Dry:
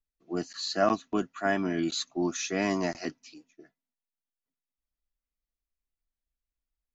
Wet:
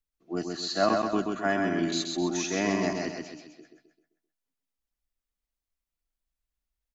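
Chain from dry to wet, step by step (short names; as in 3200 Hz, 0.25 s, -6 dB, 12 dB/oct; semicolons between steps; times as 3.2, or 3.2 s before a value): feedback echo 0.13 s, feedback 43%, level -4 dB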